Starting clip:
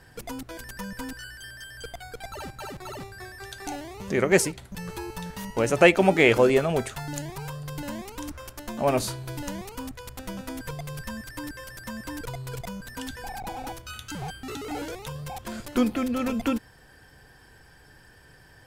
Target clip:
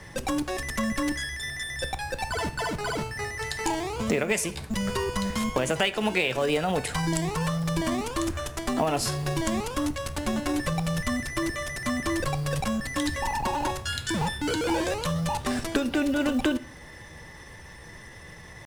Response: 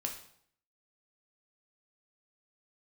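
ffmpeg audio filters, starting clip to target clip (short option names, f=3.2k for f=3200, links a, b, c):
-filter_complex "[0:a]lowpass=f=9.6k:w=0.5412,lowpass=f=9.6k:w=1.3066,acrossover=split=120|1400[a][b][c];[b]alimiter=limit=-17dB:level=0:latency=1:release=284[d];[a][d][c]amix=inputs=3:normalize=0,acompressor=threshold=-29dB:ratio=16,acrusher=bits=7:mode=log:mix=0:aa=0.000001,asetrate=49501,aresample=44100,atempo=0.890899,asplit=2[e][f];[1:a]atrim=start_sample=2205[g];[f][g]afir=irnorm=-1:irlink=0,volume=-7.5dB[h];[e][h]amix=inputs=2:normalize=0,volume=5.5dB"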